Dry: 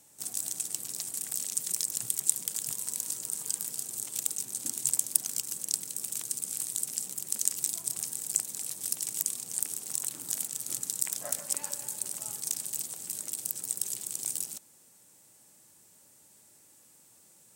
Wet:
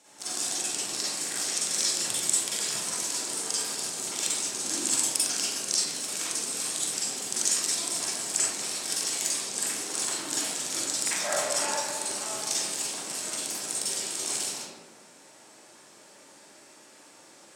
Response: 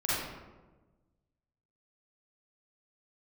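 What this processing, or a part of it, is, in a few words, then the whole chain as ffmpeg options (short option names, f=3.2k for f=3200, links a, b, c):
supermarket ceiling speaker: -filter_complex "[0:a]highpass=330,lowpass=5.5k[a];[1:a]atrim=start_sample=2205[b];[a][b]afir=irnorm=-1:irlink=0,volume=7dB"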